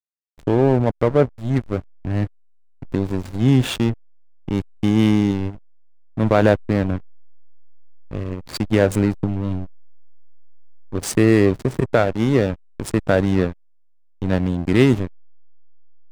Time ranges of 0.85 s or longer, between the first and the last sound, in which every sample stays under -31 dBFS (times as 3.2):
6.98–8.11
9.65–10.93